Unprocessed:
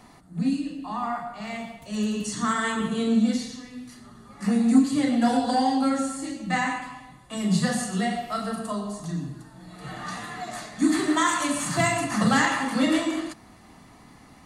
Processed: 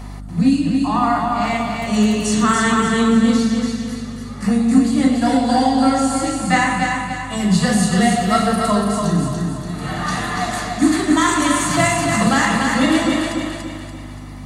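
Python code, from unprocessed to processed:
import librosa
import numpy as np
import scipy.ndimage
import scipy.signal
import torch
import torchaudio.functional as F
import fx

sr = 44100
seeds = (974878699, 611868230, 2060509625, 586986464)

p1 = fx.rider(x, sr, range_db=4, speed_s=0.5)
p2 = fx.add_hum(p1, sr, base_hz=50, snr_db=13)
p3 = p2 + fx.echo_feedback(p2, sr, ms=288, feedback_pct=44, wet_db=-4, dry=0)
y = p3 * librosa.db_to_amplitude(7.5)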